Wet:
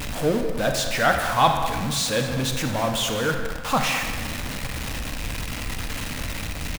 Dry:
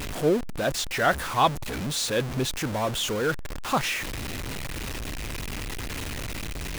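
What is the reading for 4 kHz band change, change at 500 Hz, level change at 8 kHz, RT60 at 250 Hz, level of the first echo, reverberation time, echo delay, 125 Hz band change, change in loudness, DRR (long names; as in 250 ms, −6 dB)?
+3.5 dB, +2.0 dB, +3.5 dB, 1.5 s, −13.0 dB, 1.6 s, 202 ms, +3.5 dB, +3.5 dB, 4.0 dB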